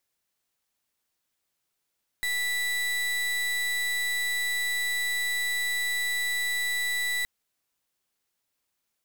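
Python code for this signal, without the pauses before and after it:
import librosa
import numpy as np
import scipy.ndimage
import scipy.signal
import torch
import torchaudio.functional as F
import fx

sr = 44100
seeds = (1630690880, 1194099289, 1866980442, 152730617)

y = fx.pulse(sr, length_s=5.02, hz=1970.0, level_db=-28.0, duty_pct=34)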